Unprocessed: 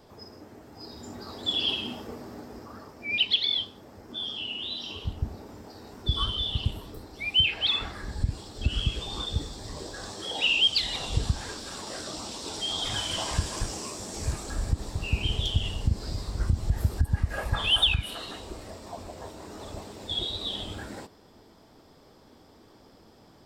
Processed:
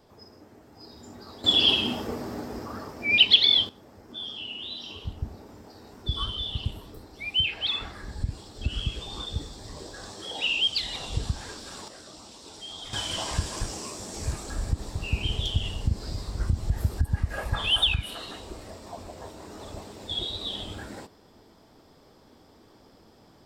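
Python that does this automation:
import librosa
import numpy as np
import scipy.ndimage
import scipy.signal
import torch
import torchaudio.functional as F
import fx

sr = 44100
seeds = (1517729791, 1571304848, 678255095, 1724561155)

y = fx.gain(x, sr, db=fx.steps((0.0, -4.0), (1.44, 7.0), (3.69, -2.5), (11.88, -9.5), (12.93, -0.5)))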